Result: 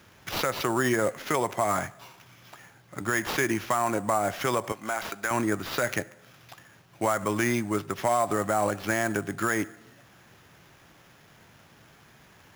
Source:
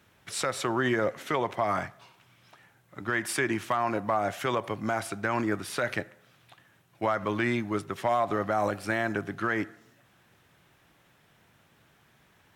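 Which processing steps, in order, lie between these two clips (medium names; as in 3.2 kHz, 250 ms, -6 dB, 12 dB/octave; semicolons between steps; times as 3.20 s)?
4.72–5.31 s: high-pass 960 Hz 6 dB/octave; in parallel at +2.5 dB: compression, threshold -41 dBFS, peak gain reduction 18 dB; on the sum: sample-rate reducer 8.5 kHz, jitter 0%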